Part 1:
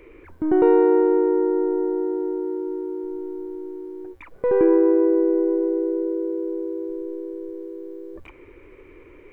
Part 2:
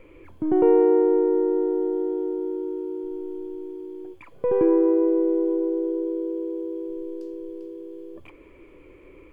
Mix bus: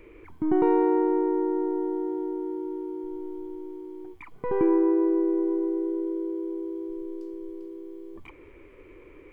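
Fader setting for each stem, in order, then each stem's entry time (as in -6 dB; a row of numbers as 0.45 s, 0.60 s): -4.5 dB, -5.5 dB; 0.00 s, 0.00 s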